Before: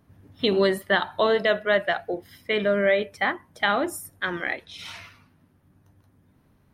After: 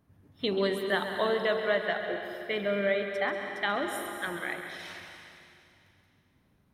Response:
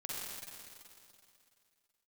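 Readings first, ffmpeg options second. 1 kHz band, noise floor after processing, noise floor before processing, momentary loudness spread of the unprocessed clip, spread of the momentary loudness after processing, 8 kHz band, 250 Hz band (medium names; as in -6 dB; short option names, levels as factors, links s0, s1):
-6.0 dB, -68 dBFS, -62 dBFS, 12 LU, 12 LU, -6.0 dB, -6.0 dB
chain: -filter_complex "[0:a]asplit=2[s0][s1];[1:a]atrim=start_sample=2205,adelay=135[s2];[s1][s2]afir=irnorm=-1:irlink=0,volume=0.562[s3];[s0][s3]amix=inputs=2:normalize=0,volume=0.422"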